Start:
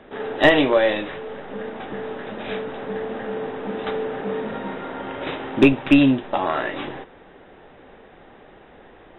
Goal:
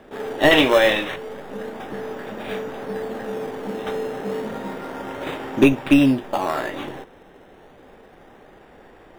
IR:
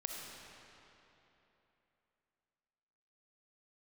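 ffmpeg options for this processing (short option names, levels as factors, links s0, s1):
-filter_complex "[0:a]asettb=1/sr,asplit=3[s0][s1][s2];[s0]atrim=end=0.514[s3];[s1]atrim=start=0.51:end=1.16,asetpts=PTS-STARTPTS,afade=t=in:d=0.004:c=qsin,afade=t=out:st=0.646:d=0.004:c=qsin,equalizer=f=3100:w=0.36:g=9.5[s4];[s2]atrim=start=1.156[s5];[s3][s4]acrossfade=d=0.004:c1=hsin:c2=qsin[s6];[s6][s5]acrossfade=d=0.004:c1=qsin:c2=hsin,asplit=2[s7][s8];[s8]acrusher=samples=13:mix=1:aa=0.000001:lfo=1:lforange=13:lforate=0.31,volume=0.316[s9];[s7][s9]amix=inputs=2:normalize=0,volume=0.75"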